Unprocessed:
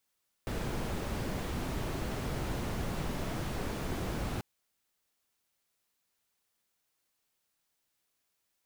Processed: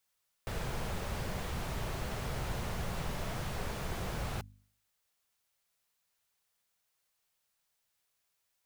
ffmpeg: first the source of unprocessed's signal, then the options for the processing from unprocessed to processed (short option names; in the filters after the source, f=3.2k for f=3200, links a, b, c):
-f lavfi -i "anoisesrc=c=brown:a=0.0881:d=3.94:r=44100:seed=1"
-af "equalizer=f=290:t=o:w=0.78:g=-10,bandreject=f=50.29:t=h:w=4,bandreject=f=100.58:t=h:w=4,bandreject=f=150.87:t=h:w=4,bandreject=f=201.16:t=h:w=4,bandreject=f=251.45:t=h:w=4"